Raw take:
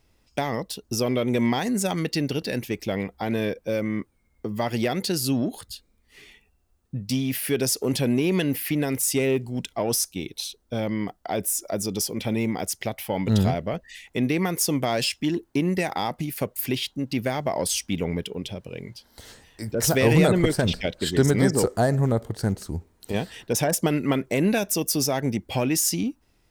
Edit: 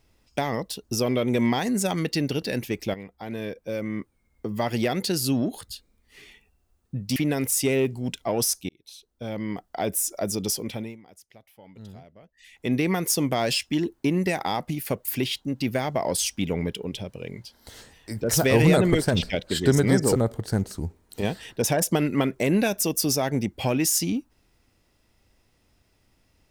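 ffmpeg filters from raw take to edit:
-filter_complex "[0:a]asplit=7[a][b][c][d][e][f][g];[a]atrim=end=2.94,asetpts=PTS-STARTPTS,afade=t=out:st=2.936:d=0.004:c=hsin:silence=0.237137[h];[b]atrim=start=2.94:end=7.162,asetpts=PTS-STARTPTS,afade=t=in:d=1.63:silence=0.237137[i];[c]atrim=start=8.668:end=10.2,asetpts=PTS-STARTPTS,afade=t=out:st=1.528:d=0.004:c=hsin[j];[d]atrim=start=10.2:end=12.48,asetpts=PTS-STARTPTS,afade=t=in:d=1.12,afade=t=out:st=1.86:d=0.42:silence=0.0707946[k];[e]atrim=start=12.48:end=13.84,asetpts=PTS-STARTPTS,volume=-23dB[l];[f]atrim=start=13.84:end=21.672,asetpts=PTS-STARTPTS,afade=t=in:d=0.42:silence=0.0707946[m];[g]atrim=start=22.068[n];[h][i]concat=n=2:v=0:a=1[o];[j][k][l][m]concat=n=4:v=0:a=1[p];[o][p]acrossfade=d=0.004:c1=hsin:c2=hsin[q];[q][n]acrossfade=d=0.004:c1=hsin:c2=hsin"

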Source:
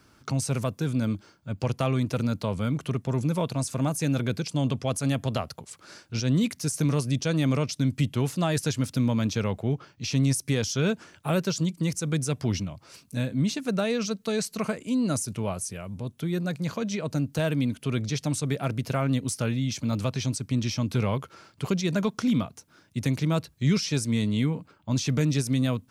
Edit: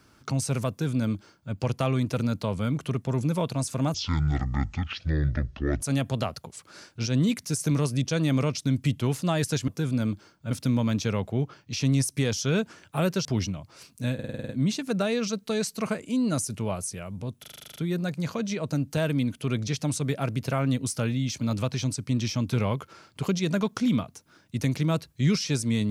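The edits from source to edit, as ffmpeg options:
-filter_complex "[0:a]asplit=22[a][b][c][d][e][f][g][h][i][j][k][l][m][n][o][p][q][r][s][t][u][v];[a]atrim=end=3.944[w];[b]atrim=start=3.94:end=4.95,asetpts=PTS-STARTPTS,asetrate=23814,aresample=44100,atrim=end_sample=82483,asetpts=PTS-STARTPTS[x];[c]atrim=start=4.946:end=8.822[y];[d]atrim=start=0.698:end=1.532[z];[e]atrim=start=8.818:end=11.562[aa];[f]atrim=start=12.378:end=13.322[ab];[g]atrim=start=13.268:end=13.322[ac];[h]atrim=start=13.268:end=13.322[ad];[i]atrim=start=13.268:end=13.322[ae];[j]atrim=start=13.268:end=13.322[af];[k]atrim=start=13.268:end=13.322[ag];[l]atrim=start=13.268:end=13.322[ah];[m]atrim=start=13.268:end=16.222[ai];[n]atrim=start=16.178:end=16.222[aj];[o]atrim=start=16.178:end=16.222[ak];[p]atrim=start=16.178:end=16.222[al];[q]atrim=start=16.178:end=16.222[am];[r]atrim=start=16.178:end=16.222[an];[s]atrim=start=16.178:end=16.222[ao];[t]atrim=start=16.178:end=16.222[ap];[u]atrim=start=16.178:end=16.222[aq];[v]atrim=start=16.178[ar];[w][x]acrossfade=d=0.004:c1=hsin:c2=hsin[as];[as][y]acrossfade=d=0.004:c1=hsin:c2=hsin[at];[at][z]acrossfade=d=0.004:c1=hsin:c2=hsin[au];[au][aa]acrossfade=d=0.004:c1=hsin:c2=hsin[av];[av][ab]acrossfade=d=0.004:c1=hsin:c2=hsin[aw];[aw][ac]acrossfade=d=0.004:c1=hsin:c2=hsin[ax];[ax][ad]acrossfade=d=0.004:c1=hsin:c2=hsin[ay];[ay][ae]acrossfade=d=0.004:c1=hsin:c2=hsin[az];[az][af]acrossfade=d=0.004:c1=hsin:c2=hsin[ba];[ba][ag]acrossfade=d=0.004:c1=hsin:c2=hsin[bb];[bb][ah]acrossfade=d=0.004:c1=hsin:c2=hsin[bc];[bc][ai]acrossfade=d=0.004:c1=hsin:c2=hsin[bd];[bd][aj]acrossfade=d=0.004:c1=hsin:c2=hsin[be];[be][ak]acrossfade=d=0.004:c1=hsin:c2=hsin[bf];[bf][al]acrossfade=d=0.004:c1=hsin:c2=hsin[bg];[bg][am]acrossfade=d=0.004:c1=hsin:c2=hsin[bh];[bh][an]acrossfade=d=0.004:c1=hsin:c2=hsin[bi];[bi][ao]acrossfade=d=0.004:c1=hsin:c2=hsin[bj];[bj][ap]acrossfade=d=0.004:c1=hsin:c2=hsin[bk];[bk][aq]acrossfade=d=0.004:c1=hsin:c2=hsin[bl];[bl][ar]acrossfade=d=0.004:c1=hsin:c2=hsin"

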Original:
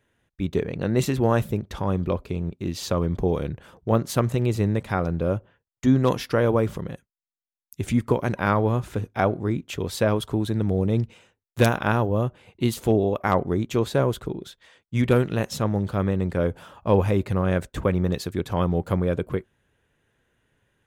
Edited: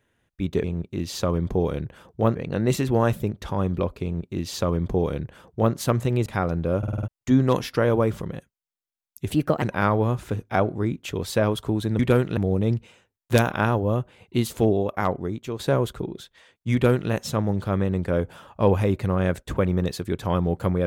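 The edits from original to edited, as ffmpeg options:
-filter_complex "[0:a]asplit=15[a][b][c][d][e][f][g][h][i][j][k][l][m][n][o];[a]atrim=end=0.642[p];[b]atrim=start=2.318:end=4.032[q];[c]atrim=start=0.638:end=4.552[r];[d]atrim=start=4.818:end=5.392[s];[e]atrim=start=5.338:end=5.392[t];[f]atrim=start=5.338:end=5.392[u];[g]atrim=start=5.338:end=5.392[v];[h]atrim=start=5.338:end=5.392[w];[i]atrim=start=5.338:end=5.392[x];[j]atrim=start=5.638:end=7.864[y];[k]atrim=start=7.86:end=8.27,asetpts=PTS-STARTPTS,asetrate=56007,aresample=44100,atrim=end_sample=14237,asetpts=PTS-STARTPTS[z];[l]atrim=start=8.266:end=10.642[aa];[m]atrim=start=14.998:end=15.382[ab];[n]atrim=start=10.638:end=13.86,asetpts=PTS-STARTPTS,afade=t=out:st=2.322:d=0.9:silence=0.334965[ac];[o]atrim=start=13.86,asetpts=PTS-STARTPTS,afade=t=in:d=0.004:c=hsin:silence=0.334965[ad];[p][q]acrossfade=d=0.004:c1=hsin:c2=hsin[ae];[ae][r]acrossfade=d=0.004:c1=hsin:c2=hsin[af];[af][s]acrossfade=d=0.004:c1=hsin:c2=hsin[ag];[ag][t]acrossfade=d=0.004:c1=hsin:c2=hsin[ah];[ah][u]acrossfade=d=0.004:c1=hsin:c2=hsin[ai];[ai][v]acrossfade=d=0.004:c1=hsin:c2=hsin[aj];[aj][w]acrossfade=d=0.004:c1=hsin:c2=hsin[ak];[ak][x]acrossfade=d=0.004:c1=hsin:c2=hsin[al];[al][y]acrossfade=d=0.004:c1=hsin:c2=hsin[am];[am][z]acrossfade=d=0.004:c1=hsin:c2=hsin[an];[an][aa]acrossfade=d=0.004:c1=hsin:c2=hsin[ao];[ao][ab]acrossfade=d=0.004:c1=hsin:c2=hsin[ap];[ac][ad]concat=n=2:v=0:a=1[aq];[ap][aq]acrossfade=d=0.004:c1=hsin:c2=hsin"

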